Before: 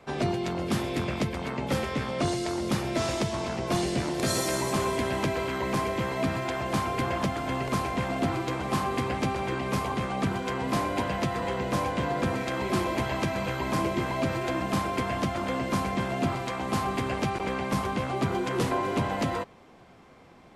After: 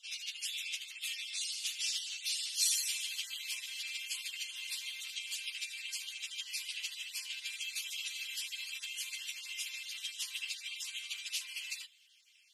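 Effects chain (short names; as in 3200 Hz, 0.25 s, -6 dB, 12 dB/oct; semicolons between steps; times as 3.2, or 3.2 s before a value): random spectral dropouts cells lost 32%; Chebyshev high-pass 2700 Hz, order 4; plain phase-vocoder stretch 0.61×; gain +8 dB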